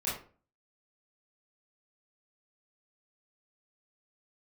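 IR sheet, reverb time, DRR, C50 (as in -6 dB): 0.40 s, -9.5 dB, 4.5 dB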